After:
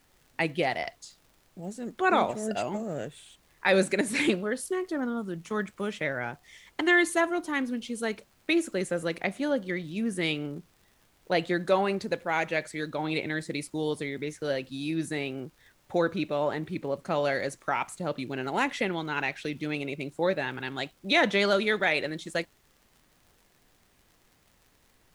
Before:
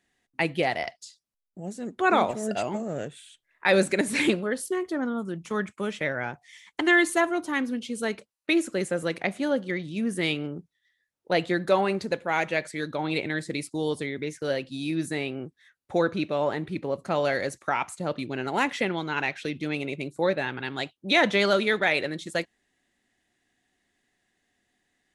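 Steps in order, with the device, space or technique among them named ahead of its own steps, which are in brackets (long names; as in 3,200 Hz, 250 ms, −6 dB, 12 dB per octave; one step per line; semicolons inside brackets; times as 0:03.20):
vinyl LP (tape wow and flutter 14 cents; surface crackle; pink noise bed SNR 35 dB)
level −2 dB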